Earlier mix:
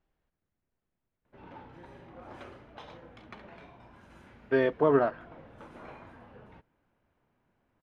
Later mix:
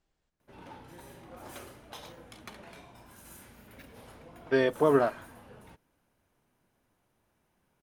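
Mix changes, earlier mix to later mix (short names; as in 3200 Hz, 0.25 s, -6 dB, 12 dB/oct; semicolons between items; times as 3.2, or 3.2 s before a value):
background: entry -0.85 s; master: remove LPF 2600 Hz 12 dB/oct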